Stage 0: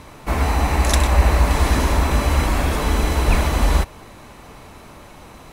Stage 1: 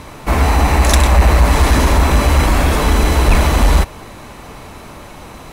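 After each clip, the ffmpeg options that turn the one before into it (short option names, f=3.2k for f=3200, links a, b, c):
-af "acontrast=85"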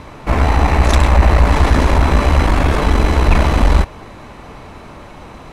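-af "aemphasis=mode=reproduction:type=50fm,aeval=exprs='0.891*(cos(1*acos(clip(val(0)/0.891,-1,1)))-cos(1*PI/2))+0.112*(cos(4*acos(clip(val(0)/0.891,-1,1)))-cos(4*PI/2))':c=same,volume=-1dB"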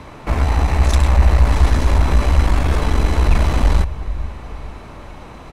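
-filter_complex "[0:a]acrossover=split=140|4000[a][b][c];[a]aecho=1:1:444|888|1332|1776|2220:0.335|0.144|0.0619|0.0266|0.0115[d];[b]alimiter=limit=-13.5dB:level=0:latency=1:release=105[e];[d][e][c]amix=inputs=3:normalize=0,volume=-2dB"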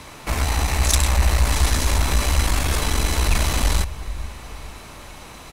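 -af "crystalizer=i=6.5:c=0,volume=-6dB"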